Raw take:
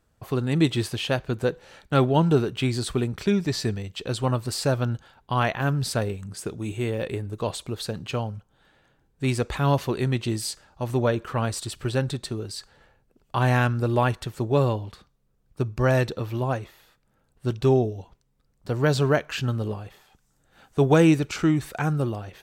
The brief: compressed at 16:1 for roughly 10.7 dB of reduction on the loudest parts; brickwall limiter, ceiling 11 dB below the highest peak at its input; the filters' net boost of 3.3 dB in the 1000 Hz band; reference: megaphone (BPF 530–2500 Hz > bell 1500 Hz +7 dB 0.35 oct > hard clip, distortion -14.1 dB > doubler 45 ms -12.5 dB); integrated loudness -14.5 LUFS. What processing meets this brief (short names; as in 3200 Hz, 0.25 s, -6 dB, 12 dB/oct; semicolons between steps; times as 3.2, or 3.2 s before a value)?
bell 1000 Hz +3.5 dB; compressor 16:1, threshold -23 dBFS; limiter -25 dBFS; BPF 530–2500 Hz; bell 1500 Hz +7 dB 0.35 oct; hard clip -31.5 dBFS; doubler 45 ms -12.5 dB; gain +26.5 dB